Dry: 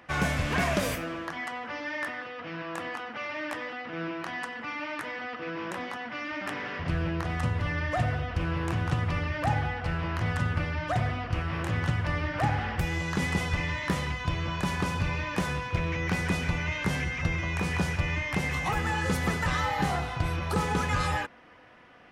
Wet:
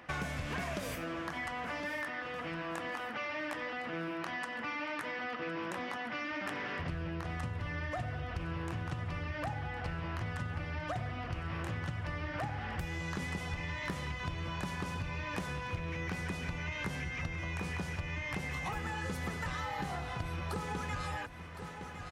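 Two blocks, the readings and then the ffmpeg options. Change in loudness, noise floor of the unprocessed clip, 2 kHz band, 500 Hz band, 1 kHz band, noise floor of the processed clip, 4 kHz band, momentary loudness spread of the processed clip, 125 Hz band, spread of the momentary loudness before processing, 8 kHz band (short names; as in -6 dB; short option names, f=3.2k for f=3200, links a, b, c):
-8.0 dB, -40 dBFS, -7.0 dB, -7.5 dB, -8.0 dB, -42 dBFS, -7.5 dB, 2 LU, -9.0 dB, 8 LU, -9.0 dB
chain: -af "aecho=1:1:1061|2122|3183:0.112|0.0494|0.0217,acompressor=threshold=-35dB:ratio=6"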